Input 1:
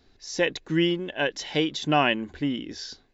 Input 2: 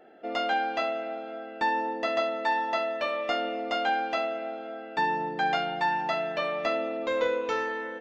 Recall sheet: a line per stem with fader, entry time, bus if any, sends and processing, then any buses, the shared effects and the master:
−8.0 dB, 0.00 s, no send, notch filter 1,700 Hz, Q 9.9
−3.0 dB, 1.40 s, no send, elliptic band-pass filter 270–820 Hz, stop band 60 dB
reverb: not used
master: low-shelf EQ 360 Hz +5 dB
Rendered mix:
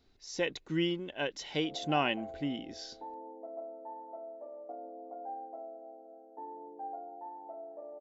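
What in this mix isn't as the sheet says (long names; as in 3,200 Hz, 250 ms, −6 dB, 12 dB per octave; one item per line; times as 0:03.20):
stem 2 −3.0 dB → −13.5 dB
master: missing low-shelf EQ 360 Hz +5 dB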